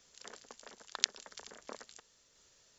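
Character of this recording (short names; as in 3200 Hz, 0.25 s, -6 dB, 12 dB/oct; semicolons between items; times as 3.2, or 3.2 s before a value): tremolo saw down 0.85 Hz, depth 30%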